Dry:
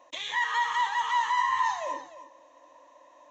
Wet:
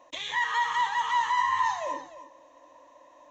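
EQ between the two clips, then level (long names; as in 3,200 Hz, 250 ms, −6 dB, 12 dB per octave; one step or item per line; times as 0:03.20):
low-shelf EQ 250 Hz +8 dB
0.0 dB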